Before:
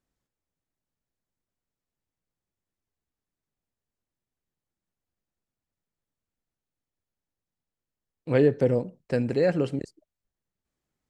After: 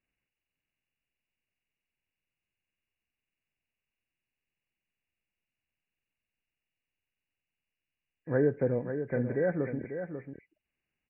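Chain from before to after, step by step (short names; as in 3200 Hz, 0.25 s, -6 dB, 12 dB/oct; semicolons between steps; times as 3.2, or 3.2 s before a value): nonlinear frequency compression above 1500 Hz 4:1; echo 0.543 s -8.5 dB; gain -6 dB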